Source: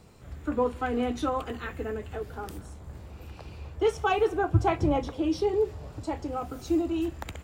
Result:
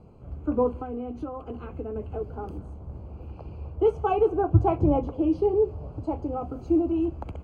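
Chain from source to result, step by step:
0:00.75–0:01.96: downward compressor 12 to 1, threshold −33 dBFS, peak gain reduction 10.5 dB
moving average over 24 samples
level +4 dB

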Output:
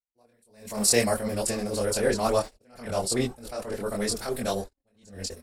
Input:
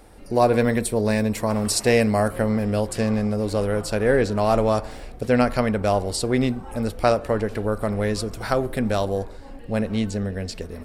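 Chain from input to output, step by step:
noise gate −32 dBFS, range −55 dB
bass and treble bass −4 dB, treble +13 dB
phase-vocoder stretch with locked phases 0.5×
multi-voice chorus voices 4, 1.5 Hz, delay 23 ms, depth 3 ms
level that may rise only so fast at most 110 dB per second

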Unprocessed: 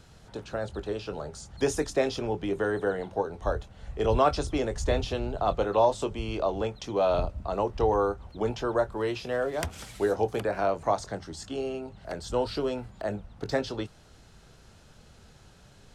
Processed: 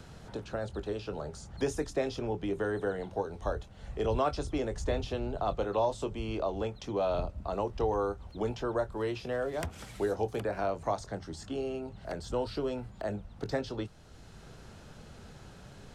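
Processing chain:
low-shelf EQ 440 Hz +3 dB
multiband upward and downward compressor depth 40%
level −6 dB

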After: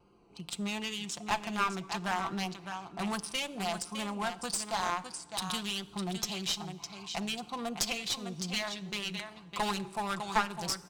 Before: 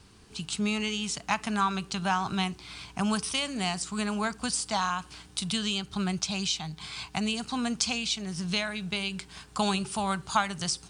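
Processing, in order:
adaptive Wiener filter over 25 samples
bass and treble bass −13 dB, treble −1 dB
notch filter 4,300 Hz, Q 26
comb filter 5.8 ms, depth 56%
single-tap delay 607 ms −10 dB
asymmetric clip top −30.5 dBFS
dense smooth reverb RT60 1.4 s, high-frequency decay 0.9×, DRR 18 dB
pitch vibrato 2.6 Hz 40 cents

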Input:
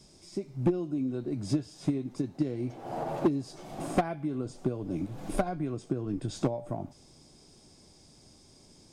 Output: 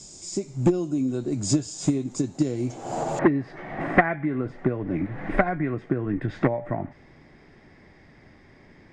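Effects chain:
low-pass with resonance 7,200 Hz, resonance Q 9, from 0:03.19 1,900 Hz
level +6 dB

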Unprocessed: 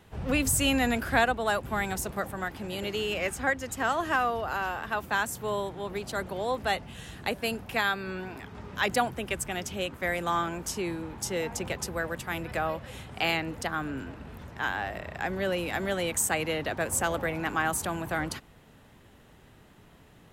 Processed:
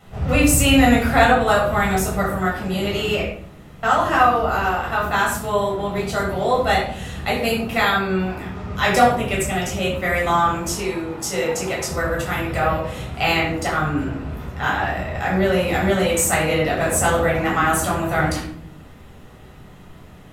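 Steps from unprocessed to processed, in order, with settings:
0:03.21–0:03.83: fill with room tone
0:10.76–0:11.91: low-shelf EQ 180 Hz −11.5 dB
rectangular room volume 860 cubic metres, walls furnished, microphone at 6.7 metres
level +1.5 dB

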